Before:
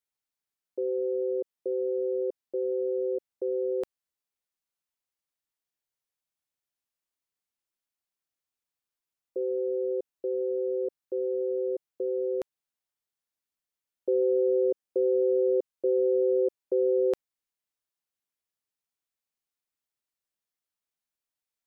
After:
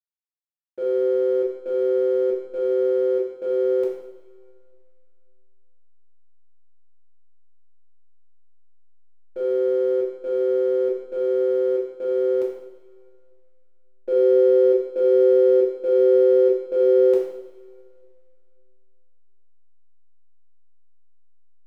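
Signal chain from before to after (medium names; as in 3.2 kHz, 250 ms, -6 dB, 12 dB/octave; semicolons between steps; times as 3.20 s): hum notches 50/100/150/200/250/300/350 Hz; hysteresis with a dead band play -37.5 dBFS; two-slope reverb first 0.75 s, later 2.6 s, from -18 dB, DRR -4.5 dB; trim -1.5 dB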